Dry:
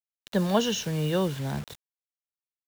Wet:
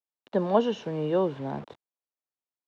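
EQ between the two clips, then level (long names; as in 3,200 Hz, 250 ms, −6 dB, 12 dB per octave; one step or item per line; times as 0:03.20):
band-pass filter 100–2,900 Hz
flat-topped bell 520 Hz +9.5 dB 2.5 octaves
−6.5 dB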